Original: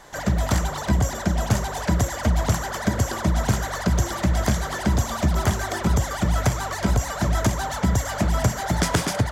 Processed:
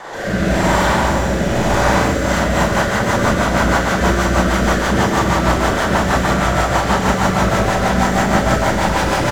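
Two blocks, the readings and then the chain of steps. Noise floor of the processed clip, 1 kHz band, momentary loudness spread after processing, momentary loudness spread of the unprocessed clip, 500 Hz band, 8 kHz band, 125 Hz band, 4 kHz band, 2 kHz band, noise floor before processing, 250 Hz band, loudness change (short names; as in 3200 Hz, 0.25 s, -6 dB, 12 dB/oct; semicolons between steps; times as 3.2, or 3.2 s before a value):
-19 dBFS, +11.5 dB, 2 LU, 2 LU, +12.0 dB, +3.5 dB, +3.0 dB, +8.5 dB, +12.0 dB, -31 dBFS, +8.0 dB, +7.5 dB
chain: echo 0.149 s -4.5 dB; overdrive pedal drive 36 dB, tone 1200 Hz, clips at -6.5 dBFS; Schroeder reverb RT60 2.5 s, combs from 33 ms, DRR -9 dB; rotary speaker horn 0.9 Hz, later 6.3 Hz, at 1.89; gain -6.5 dB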